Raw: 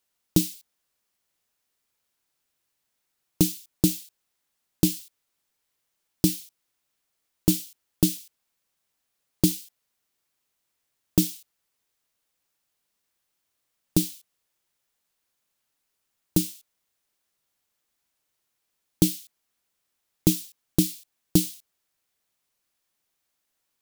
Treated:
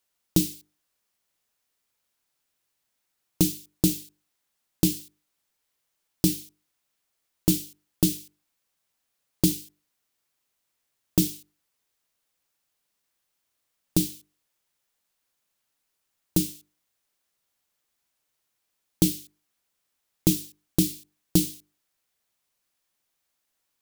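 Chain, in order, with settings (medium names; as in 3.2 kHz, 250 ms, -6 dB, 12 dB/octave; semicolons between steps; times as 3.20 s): hum notches 50/100/150/200/250/300/350/400/450 Hz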